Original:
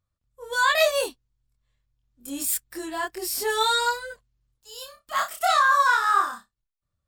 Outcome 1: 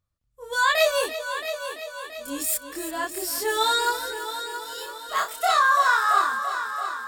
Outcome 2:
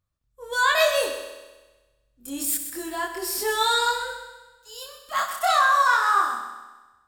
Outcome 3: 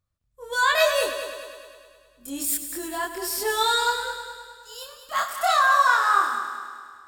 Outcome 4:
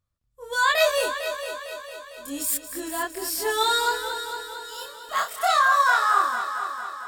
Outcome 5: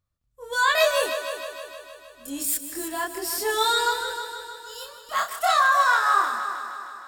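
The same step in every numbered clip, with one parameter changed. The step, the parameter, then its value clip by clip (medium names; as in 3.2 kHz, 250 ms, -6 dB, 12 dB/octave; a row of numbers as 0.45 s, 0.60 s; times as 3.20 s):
multi-head delay, time: 337 ms, 64 ms, 103 ms, 227 ms, 155 ms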